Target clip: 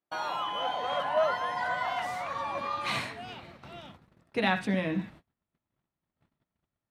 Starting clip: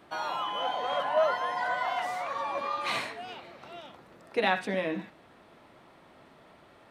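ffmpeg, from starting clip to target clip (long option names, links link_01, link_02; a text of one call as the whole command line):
ffmpeg -i in.wav -af "asubboost=boost=5.5:cutoff=190,agate=range=-36dB:threshold=-48dB:ratio=16:detection=peak" out.wav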